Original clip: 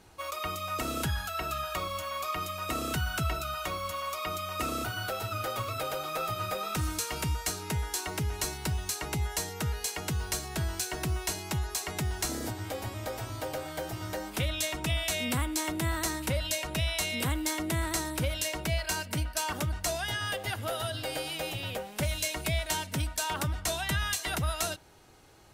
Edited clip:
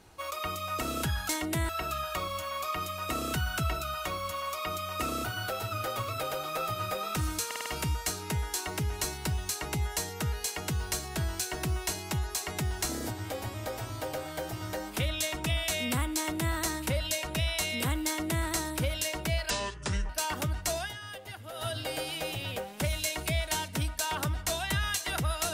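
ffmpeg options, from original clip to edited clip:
-filter_complex "[0:a]asplit=11[s0][s1][s2][s3][s4][s5][s6][s7][s8][s9][s10];[s0]atrim=end=1.292[s11];[s1]atrim=start=17.458:end=17.862[s12];[s2]atrim=start=1.288:end=7.112[s13];[s3]atrim=start=7.058:end=7.112[s14];[s4]atrim=start=7.058:end=7.112[s15];[s5]atrim=start=7.058:end=7.112[s16];[s6]atrim=start=7.058:end=18.904[s17];[s7]atrim=start=18.9:end=19.28,asetpts=PTS-STARTPTS,asetrate=28224,aresample=44100,atrim=end_sample=26184,asetpts=PTS-STARTPTS[s18];[s8]atrim=start=19.276:end=20.12,asetpts=PTS-STARTPTS,afade=t=out:st=0.714:d=0.13:silence=0.334965[s19];[s9]atrim=start=20.12:end=20.72,asetpts=PTS-STARTPTS,volume=0.335[s20];[s10]atrim=start=20.72,asetpts=PTS-STARTPTS,afade=t=in:d=0.13:silence=0.334965[s21];[s11][s12]acrossfade=d=0.004:c1=hsin:c2=hsin[s22];[s22][s13]acrossfade=d=0.004:c1=hsin:c2=hsin[s23];[s23][s14]acrossfade=d=0.004:c1=hsin:c2=hsin[s24];[s24][s15]acrossfade=d=0.004:c1=hsin:c2=hsin[s25];[s25][s16]acrossfade=d=0.004:c1=hsin:c2=hsin[s26];[s26][s17]acrossfade=d=0.004:c1=hsin:c2=hsin[s27];[s27][s18]acrossfade=d=0.004:c1=hsin:c2=hsin[s28];[s19][s20][s21]concat=n=3:v=0:a=1[s29];[s28][s29]acrossfade=d=0.004:c1=hsin:c2=hsin"

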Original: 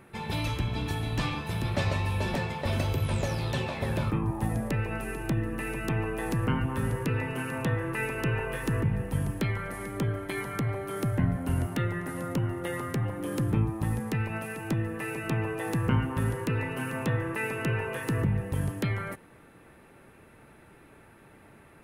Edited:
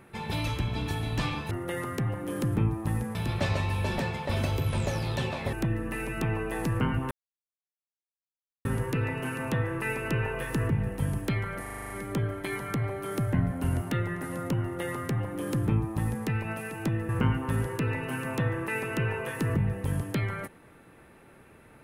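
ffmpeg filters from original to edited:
-filter_complex "[0:a]asplit=13[s0][s1][s2][s3][s4][s5][s6][s7][s8][s9][s10][s11][s12];[s0]atrim=end=1.512[s13];[s1]atrim=start=12.468:end=14.112[s14];[s2]atrim=start=1.508:end=3.892[s15];[s3]atrim=start=5.198:end=6.78,asetpts=PTS-STARTPTS,afade=t=out:st=1.578:d=0.004:c=hsin,apad=pad_dur=1.54[s16];[s4]atrim=start=6.78:end=9.792,asetpts=PTS-STARTPTS,afade=t=in:d=0.004:c=hsin[s17];[s5]atrim=start=9.748:end=9.792[s18];[s6]atrim=start=9.748:end=9.792[s19];[s7]atrim=start=9.748:end=9.792[s20];[s8]atrim=start=9.748:end=9.792[s21];[s9]atrim=start=9.748:end=9.792[s22];[s10]atrim=start=9.748:end=9.792[s23];[s11]atrim=start=9.748:end=14.942[s24];[s12]atrim=start=15.768[s25];[s13][s14]acrossfade=d=0.004:c1=hsin:c2=hsin[s26];[s26][s15]acrossfade=d=0.004:c1=hsin:c2=hsin[s27];[s16][s17]concat=n=2:v=0:a=1[s28];[s27][s28]acrossfade=d=0.004:c1=hsin:c2=hsin[s29];[s29][s18]acrossfade=d=0.004:c1=hsin:c2=hsin[s30];[s30][s19]acrossfade=d=0.004:c1=hsin:c2=hsin[s31];[s31][s20]acrossfade=d=0.004:c1=hsin:c2=hsin[s32];[s32][s21]acrossfade=d=0.004:c1=hsin:c2=hsin[s33];[s33][s22]acrossfade=d=0.004:c1=hsin:c2=hsin[s34];[s34][s23]acrossfade=d=0.004:c1=hsin:c2=hsin[s35];[s35][s24]acrossfade=d=0.004:c1=hsin:c2=hsin[s36];[s36][s25]acrossfade=d=0.004:c1=hsin:c2=hsin"

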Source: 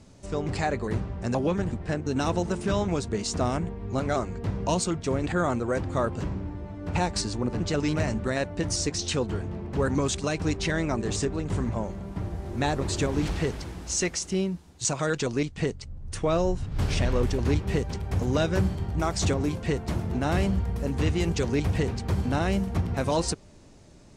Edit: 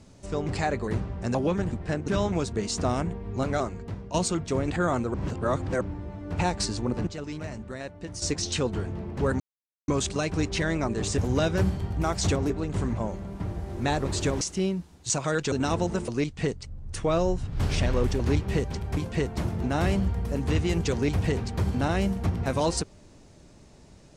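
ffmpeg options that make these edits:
-filter_complex "[0:a]asplit=14[s0][s1][s2][s3][s4][s5][s6][s7][s8][s9][s10][s11][s12][s13];[s0]atrim=end=2.082[s14];[s1]atrim=start=2.638:end=4.7,asetpts=PTS-STARTPTS,afade=t=out:st=1.442:d=0.62:silence=0.223872[s15];[s2]atrim=start=4.7:end=5.702,asetpts=PTS-STARTPTS,afade=t=in:d=0.004:c=hsin:silence=0.223872[s16];[s3]atrim=start=5.698:end=6.372,asetpts=PTS-STARTPTS,areverse[s17];[s4]atrim=start=6.368:end=7.632[s18];[s5]atrim=start=7.628:end=8.782,asetpts=PTS-STARTPTS,volume=0.335[s19];[s6]atrim=start=8.778:end=9.96,asetpts=PTS-STARTPTS,afade=t=out:st=1.178:d=0.004:c=hsin,apad=pad_dur=0.48[s20];[s7]atrim=start=9.96:end=11.262,asetpts=PTS-STARTPTS,afade=t=in:d=0.004:c=hsin[s21];[s8]atrim=start=18.158:end=19.482[s22];[s9]atrim=start=11.258:end=13.172[s23];[s10]atrim=start=14.158:end=15.272[s24];[s11]atrim=start=2.078:end=2.642[s25];[s12]atrim=start=15.268:end=18.162[s26];[s13]atrim=start=19.478[s27];[s15][s16]concat=n=2:v=0:a=1[s28];[s14][s28]acrossfade=d=0.004:c1=hsin:c2=hsin[s29];[s29][s17]acrossfade=d=0.004:c1=hsin:c2=hsin[s30];[s30][s18]acrossfade=d=0.004:c1=hsin:c2=hsin[s31];[s31][s19]acrossfade=d=0.004:c1=hsin:c2=hsin[s32];[s20][s21]concat=n=2:v=0:a=1[s33];[s32][s33]acrossfade=d=0.004:c1=hsin:c2=hsin[s34];[s34][s22]acrossfade=d=0.004:c1=hsin:c2=hsin[s35];[s35][s23]acrossfade=d=0.004:c1=hsin:c2=hsin[s36];[s36][s24]acrossfade=d=0.004:c1=hsin:c2=hsin[s37];[s37][s25]acrossfade=d=0.004:c1=hsin:c2=hsin[s38];[s38][s26]acrossfade=d=0.004:c1=hsin:c2=hsin[s39];[s39][s27]acrossfade=d=0.004:c1=hsin:c2=hsin"

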